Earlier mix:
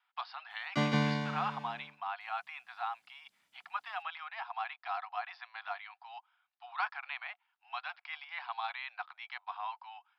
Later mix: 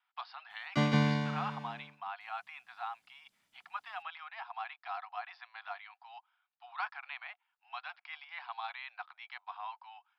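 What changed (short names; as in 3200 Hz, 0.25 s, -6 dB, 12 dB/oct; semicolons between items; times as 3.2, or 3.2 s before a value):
speech -3.0 dB; background: add low shelf 130 Hz +7.5 dB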